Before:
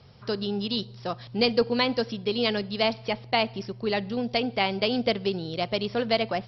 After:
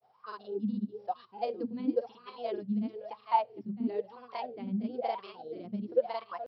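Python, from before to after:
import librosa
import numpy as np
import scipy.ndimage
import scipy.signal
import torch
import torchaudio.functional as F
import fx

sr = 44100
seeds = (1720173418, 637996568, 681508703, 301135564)

y = scipy.signal.sosfilt(scipy.signal.butter(2, 110.0, 'highpass', fs=sr, output='sos'), x)
y = fx.high_shelf(y, sr, hz=2100.0, db=9.0)
y = y + 10.0 ** (-11.0 / 20.0) * np.pad(y, (int(464 * sr / 1000.0), 0))[:len(y)]
y = fx.wah_lfo(y, sr, hz=1.0, low_hz=200.0, high_hz=1200.0, q=17.0)
y = fx.granulator(y, sr, seeds[0], grain_ms=100.0, per_s=20.0, spray_ms=33.0, spread_st=0)
y = F.gain(torch.from_numpy(y), 8.5).numpy()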